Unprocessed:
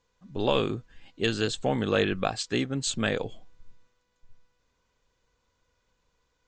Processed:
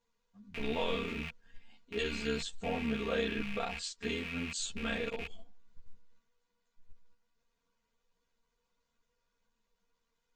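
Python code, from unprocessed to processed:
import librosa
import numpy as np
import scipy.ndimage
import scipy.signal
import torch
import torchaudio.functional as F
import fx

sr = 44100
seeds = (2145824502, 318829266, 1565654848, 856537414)

p1 = fx.rattle_buzz(x, sr, strikes_db=-42.0, level_db=-21.0)
p2 = fx.stretch_grains(p1, sr, factor=1.6, grain_ms=23.0)
p3 = fx.level_steps(p2, sr, step_db=21)
p4 = p2 + (p3 * 10.0 ** (2.0 / 20.0))
p5 = fx.ensemble(p4, sr)
y = p5 * 10.0 ** (-7.0 / 20.0)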